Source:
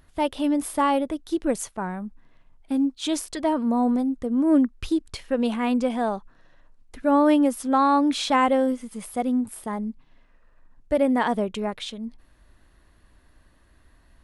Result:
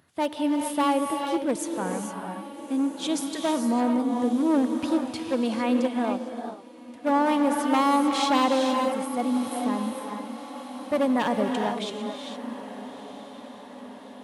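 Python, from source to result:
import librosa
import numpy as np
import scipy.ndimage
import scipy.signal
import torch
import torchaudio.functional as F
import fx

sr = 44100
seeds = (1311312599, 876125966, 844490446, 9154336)

y = np.minimum(x, 2.0 * 10.0 ** (-18.5 / 20.0) - x)
y = scipy.signal.sosfilt(scipy.signal.butter(4, 110.0, 'highpass', fs=sr, output='sos'), y)
y = fx.echo_diffused(y, sr, ms=1288, feedback_pct=59, wet_db=-14.0)
y = fx.rev_gated(y, sr, seeds[0], gate_ms=480, shape='rising', drr_db=3.5)
y = fx.upward_expand(y, sr, threshold_db=-33.0, expansion=1.5, at=(5.86, 7.08), fade=0.02)
y = F.gain(torch.from_numpy(y), -2.0).numpy()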